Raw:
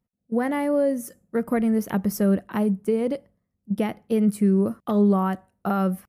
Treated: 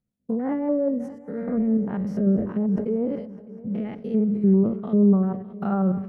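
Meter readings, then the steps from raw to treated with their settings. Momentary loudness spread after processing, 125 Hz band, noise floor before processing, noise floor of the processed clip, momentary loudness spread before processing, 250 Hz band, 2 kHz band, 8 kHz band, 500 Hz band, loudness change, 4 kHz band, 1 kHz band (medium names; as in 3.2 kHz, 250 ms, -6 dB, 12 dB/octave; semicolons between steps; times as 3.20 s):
12 LU, +2.0 dB, -79 dBFS, -46 dBFS, 9 LU, +1.0 dB, under -10 dB, under -20 dB, -2.0 dB, 0.0 dB, under -10 dB, -6.5 dB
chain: spectrogram pixelated in time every 100 ms; bass shelf 300 Hz +3.5 dB; low-pass that closes with the level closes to 940 Hz, closed at -19 dBFS; rotary cabinet horn 5.5 Hz, later 0.75 Hz, at 1.27 s; multi-head delay 203 ms, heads first and third, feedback 63%, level -21 dB; decay stretcher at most 84 dB/s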